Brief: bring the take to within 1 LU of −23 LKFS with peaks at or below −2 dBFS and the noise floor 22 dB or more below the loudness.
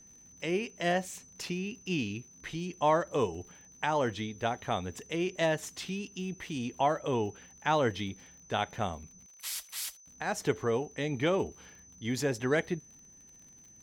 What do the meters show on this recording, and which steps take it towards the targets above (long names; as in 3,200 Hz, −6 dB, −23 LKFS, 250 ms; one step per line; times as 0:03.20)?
crackle rate 53 per second; interfering tone 6,100 Hz; level of the tone −54 dBFS; integrated loudness −33.0 LKFS; sample peak −14.0 dBFS; target loudness −23.0 LKFS
→ click removal
notch filter 6,100 Hz, Q 30
level +10 dB